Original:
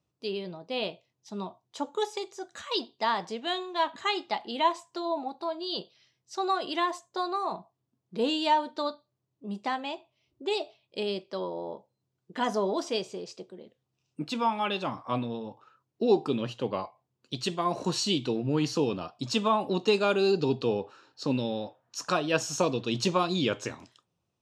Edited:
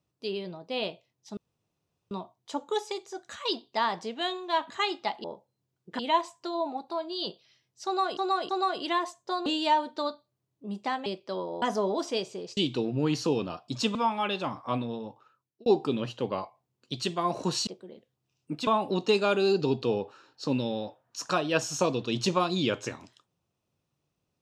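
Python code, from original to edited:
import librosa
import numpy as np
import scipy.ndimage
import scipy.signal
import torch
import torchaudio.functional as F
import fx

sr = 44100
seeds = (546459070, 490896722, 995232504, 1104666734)

y = fx.edit(x, sr, fx.insert_room_tone(at_s=1.37, length_s=0.74),
    fx.repeat(start_s=6.36, length_s=0.32, count=3),
    fx.cut(start_s=7.33, length_s=0.93),
    fx.cut(start_s=9.86, length_s=1.24),
    fx.move(start_s=11.66, length_s=0.75, to_s=4.5),
    fx.swap(start_s=13.36, length_s=1.0, other_s=18.08, other_length_s=1.38),
    fx.fade_out_span(start_s=15.49, length_s=0.58), tone=tone)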